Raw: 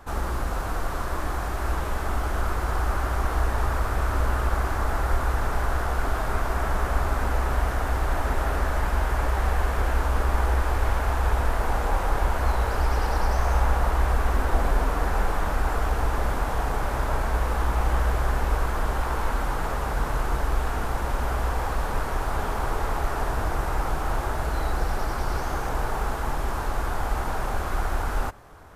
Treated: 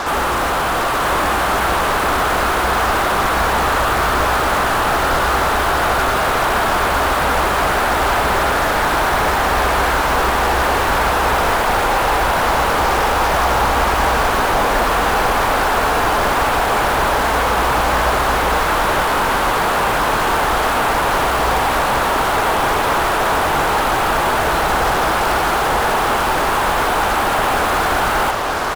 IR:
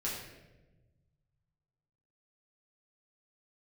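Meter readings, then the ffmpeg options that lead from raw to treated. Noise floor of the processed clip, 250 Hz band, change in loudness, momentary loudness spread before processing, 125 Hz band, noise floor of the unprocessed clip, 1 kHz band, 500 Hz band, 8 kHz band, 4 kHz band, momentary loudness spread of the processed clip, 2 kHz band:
−18 dBFS, +10.5 dB, +11.5 dB, 4 LU, +0.5 dB, −29 dBFS, +14.5 dB, +13.0 dB, +14.5 dB, +18.5 dB, 1 LU, +15.0 dB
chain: -filter_complex "[0:a]asplit=2[link_01][link_02];[link_02]highpass=frequency=720:poles=1,volume=39dB,asoftclip=type=tanh:threshold=-9dB[link_03];[link_01][link_03]amix=inputs=2:normalize=0,lowpass=frequency=1700:poles=1,volume=-6dB,acrusher=bits=3:mix=0:aa=0.5,aecho=1:1:952:0.531"

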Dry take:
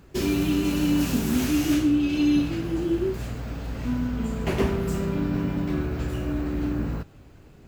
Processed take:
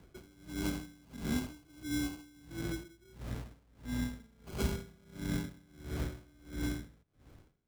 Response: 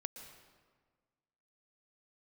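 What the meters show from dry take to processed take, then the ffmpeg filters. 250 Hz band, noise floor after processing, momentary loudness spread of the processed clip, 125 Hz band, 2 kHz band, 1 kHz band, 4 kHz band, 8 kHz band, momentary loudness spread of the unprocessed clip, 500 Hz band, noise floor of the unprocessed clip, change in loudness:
−16.5 dB, −67 dBFS, 15 LU, −12.5 dB, −10.5 dB, −14.5 dB, −11.5 dB, −10.0 dB, 10 LU, −17.0 dB, −50 dBFS, −14.5 dB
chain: -filter_complex "[0:a]acrusher=samples=24:mix=1:aa=0.000001,acrossover=split=190|3000[link_01][link_02][link_03];[link_02]acompressor=threshold=-30dB:ratio=2.5[link_04];[link_01][link_04][link_03]amix=inputs=3:normalize=0,aeval=exprs='val(0)*pow(10,-29*(0.5-0.5*cos(2*PI*1.5*n/s))/20)':channel_layout=same,volume=-6dB"

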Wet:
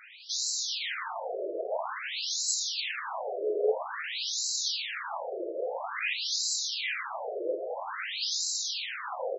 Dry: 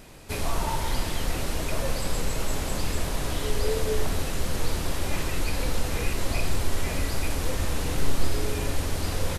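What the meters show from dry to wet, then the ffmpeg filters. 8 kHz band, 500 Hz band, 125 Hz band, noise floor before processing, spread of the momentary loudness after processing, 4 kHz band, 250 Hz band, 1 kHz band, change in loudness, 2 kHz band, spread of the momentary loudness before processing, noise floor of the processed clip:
+2.0 dB, −1.0 dB, below −40 dB, −31 dBFS, 7 LU, +4.0 dB, −15.0 dB, −2.5 dB, −1.5 dB, −0.5 dB, 2 LU, −39 dBFS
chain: -af "crystalizer=i=2:c=0,afftfilt=real='re*between(b*sr/1024,460*pow(5500/460,0.5+0.5*sin(2*PI*0.5*pts/sr))/1.41,460*pow(5500/460,0.5+0.5*sin(2*PI*0.5*pts/sr))*1.41)':imag='im*between(b*sr/1024,460*pow(5500/460,0.5+0.5*sin(2*PI*0.5*pts/sr))/1.41,460*pow(5500/460,0.5+0.5*sin(2*PI*0.5*pts/sr))*1.41)':win_size=1024:overlap=0.75,volume=5dB"

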